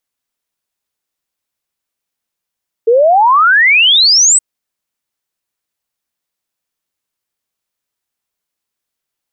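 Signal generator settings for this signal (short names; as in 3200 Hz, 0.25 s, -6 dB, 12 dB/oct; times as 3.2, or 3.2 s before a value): log sweep 440 Hz -> 8300 Hz 1.52 s -5 dBFS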